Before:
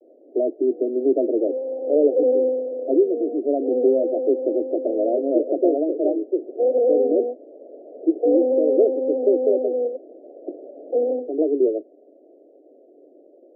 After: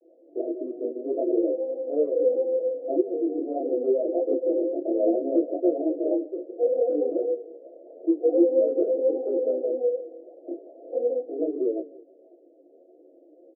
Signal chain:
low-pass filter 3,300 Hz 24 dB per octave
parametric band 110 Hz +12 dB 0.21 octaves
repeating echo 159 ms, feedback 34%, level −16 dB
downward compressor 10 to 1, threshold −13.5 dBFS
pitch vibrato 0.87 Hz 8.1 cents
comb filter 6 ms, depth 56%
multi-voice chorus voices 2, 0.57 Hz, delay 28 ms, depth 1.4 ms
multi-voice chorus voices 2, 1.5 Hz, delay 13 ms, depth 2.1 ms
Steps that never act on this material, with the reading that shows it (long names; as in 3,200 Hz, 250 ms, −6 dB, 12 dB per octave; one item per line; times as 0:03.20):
low-pass filter 3,300 Hz: nothing at its input above 810 Hz
parametric band 110 Hz: nothing at its input below 230 Hz